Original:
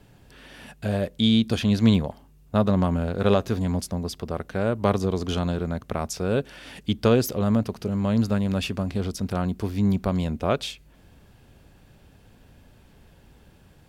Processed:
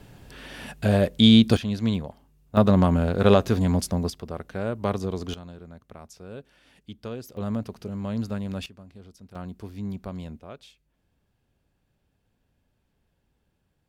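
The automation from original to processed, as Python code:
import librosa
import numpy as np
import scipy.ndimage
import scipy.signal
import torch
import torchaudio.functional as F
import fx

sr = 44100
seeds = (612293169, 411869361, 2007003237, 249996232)

y = fx.gain(x, sr, db=fx.steps((0.0, 5.0), (1.57, -6.5), (2.57, 3.0), (4.1, -4.5), (5.34, -16.5), (7.37, -7.0), (8.66, -20.0), (9.35, -11.0), (10.4, -19.0)))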